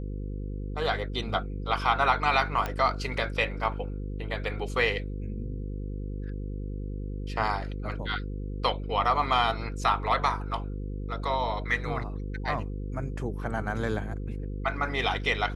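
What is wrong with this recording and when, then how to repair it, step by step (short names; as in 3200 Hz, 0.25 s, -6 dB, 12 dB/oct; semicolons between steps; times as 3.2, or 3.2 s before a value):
buzz 50 Hz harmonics 10 -34 dBFS
2.66 pop -16 dBFS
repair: de-click; de-hum 50 Hz, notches 10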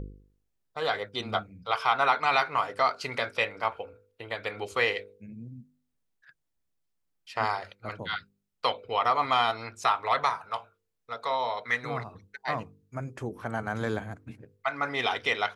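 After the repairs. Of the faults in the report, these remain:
none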